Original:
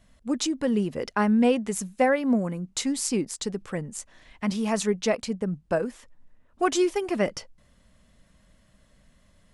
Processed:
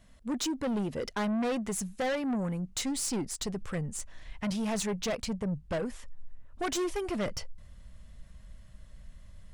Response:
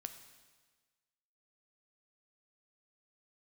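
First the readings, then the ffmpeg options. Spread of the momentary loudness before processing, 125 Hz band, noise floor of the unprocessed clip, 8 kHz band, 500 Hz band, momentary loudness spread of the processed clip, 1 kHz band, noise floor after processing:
10 LU, -3.0 dB, -62 dBFS, -3.5 dB, -8.0 dB, 7 LU, -7.5 dB, -54 dBFS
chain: -af "asubboost=boost=4.5:cutoff=120,asoftclip=type=tanh:threshold=0.0422"

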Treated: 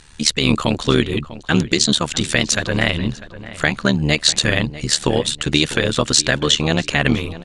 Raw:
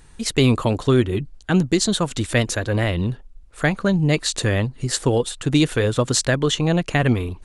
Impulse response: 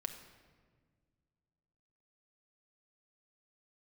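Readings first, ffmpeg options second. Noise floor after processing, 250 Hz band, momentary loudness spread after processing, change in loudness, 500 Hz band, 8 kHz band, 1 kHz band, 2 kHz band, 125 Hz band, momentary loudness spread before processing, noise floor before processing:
-39 dBFS, +0.5 dB, 6 LU, +3.0 dB, -0.5 dB, +5.5 dB, +2.5 dB, +6.0 dB, -1.5 dB, 5 LU, -45 dBFS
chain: -filter_complex "[0:a]lowpass=4200,equalizer=f=220:t=o:w=0.26:g=6.5,tremolo=f=75:d=0.857,crystalizer=i=9:c=0,alimiter=limit=0.631:level=0:latency=1:release=119,asplit=2[s0][s1];[s1]adelay=647,lowpass=f=2600:p=1,volume=0.168,asplit=2[s2][s3];[s3]adelay=647,lowpass=f=2600:p=1,volume=0.35,asplit=2[s4][s5];[s5]adelay=647,lowpass=f=2600:p=1,volume=0.35[s6];[s0][s2][s4][s6]amix=inputs=4:normalize=0,volume=1.33"

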